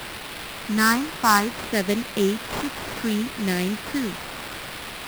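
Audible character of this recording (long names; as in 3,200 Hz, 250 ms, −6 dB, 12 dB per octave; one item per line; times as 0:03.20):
a quantiser's noise floor 6 bits, dither triangular
phaser sweep stages 4, 0.64 Hz, lowest notch 510–1,100 Hz
aliases and images of a low sample rate 6,600 Hz, jitter 20%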